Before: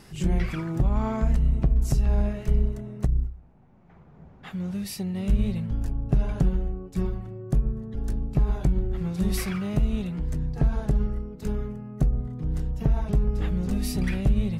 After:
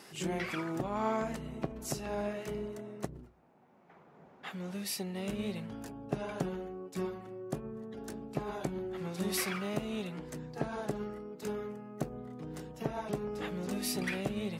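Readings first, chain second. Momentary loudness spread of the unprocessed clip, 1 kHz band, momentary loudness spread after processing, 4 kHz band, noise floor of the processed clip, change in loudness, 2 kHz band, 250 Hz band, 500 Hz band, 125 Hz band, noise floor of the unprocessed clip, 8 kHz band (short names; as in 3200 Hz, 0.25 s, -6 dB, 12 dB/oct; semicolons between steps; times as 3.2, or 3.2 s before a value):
7 LU, 0.0 dB, 10 LU, 0.0 dB, -60 dBFS, -10.5 dB, 0.0 dB, -8.5 dB, -1.5 dB, -16.5 dB, -51 dBFS, 0.0 dB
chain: HPF 330 Hz 12 dB/oct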